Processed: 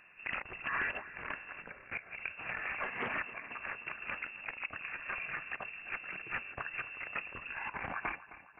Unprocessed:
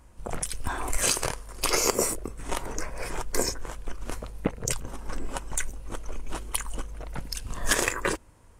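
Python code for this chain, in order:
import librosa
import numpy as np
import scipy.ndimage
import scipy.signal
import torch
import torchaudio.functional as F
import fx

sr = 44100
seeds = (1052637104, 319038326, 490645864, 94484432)

p1 = fx.fade_out_tail(x, sr, length_s=1.35)
p2 = fx.highpass(p1, sr, hz=320.0, slope=6)
p3 = fx.peak_eq(p2, sr, hz=460.0, db=-7.5, octaves=0.85)
p4 = fx.over_compress(p3, sr, threshold_db=-35.0, ratio=-0.5)
p5 = 10.0 ** (-25.5 / 20.0) * (np.abs((p4 / 10.0 ** (-25.5 / 20.0) + 3.0) % 4.0 - 2.0) - 1.0)
p6 = fx.air_absorb(p5, sr, metres=140.0)
p7 = p6 + fx.echo_feedback(p6, sr, ms=262, feedback_pct=55, wet_db=-16.0, dry=0)
p8 = fx.freq_invert(p7, sr, carrier_hz=2700)
y = fx.doppler_dist(p8, sr, depth_ms=0.14)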